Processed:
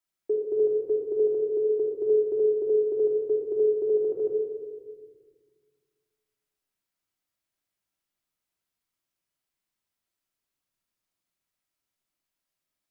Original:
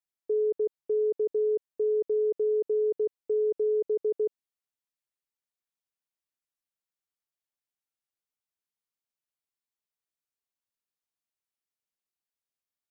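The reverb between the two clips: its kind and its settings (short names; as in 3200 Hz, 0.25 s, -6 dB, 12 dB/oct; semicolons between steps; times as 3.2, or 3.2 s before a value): shoebox room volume 1700 m³, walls mixed, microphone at 2.9 m; gain +2.5 dB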